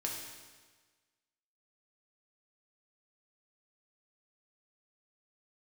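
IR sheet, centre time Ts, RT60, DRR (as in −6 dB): 66 ms, 1.4 s, −1.5 dB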